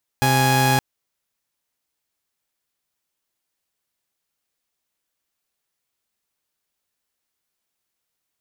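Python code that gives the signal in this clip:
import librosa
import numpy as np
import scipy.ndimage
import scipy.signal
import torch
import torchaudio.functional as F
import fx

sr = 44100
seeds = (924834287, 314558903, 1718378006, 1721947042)

y = fx.chord(sr, length_s=0.57, notes=(48, 80), wave='saw', level_db=-15.5)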